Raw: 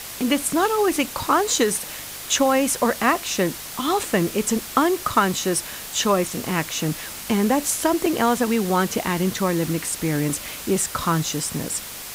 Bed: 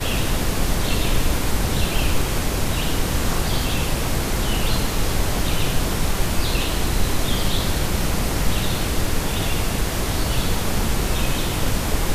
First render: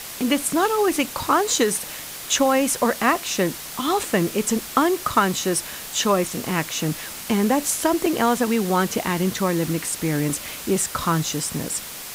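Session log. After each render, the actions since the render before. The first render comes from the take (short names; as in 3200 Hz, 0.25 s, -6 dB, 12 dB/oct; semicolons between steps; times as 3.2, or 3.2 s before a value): de-hum 50 Hz, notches 2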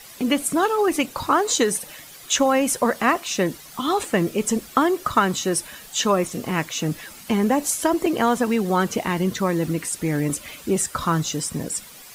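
denoiser 11 dB, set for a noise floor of -35 dBFS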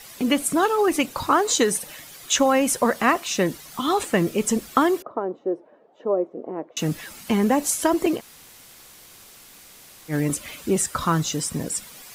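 5.02–6.77 Butterworth band-pass 470 Hz, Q 1.2; 8.18–10.11 room tone, crossfade 0.06 s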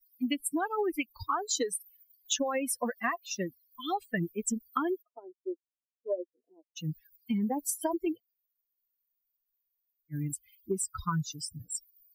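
per-bin expansion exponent 3; compressor, threshold -27 dBFS, peak gain reduction 9 dB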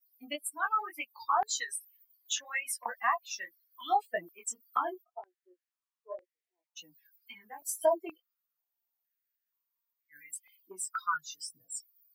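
chorus 1.9 Hz, delay 16 ms, depth 6.4 ms; stepped high-pass 2.1 Hz 640–2000 Hz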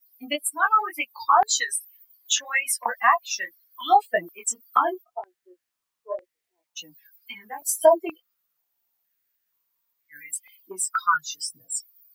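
gain +10.5 dB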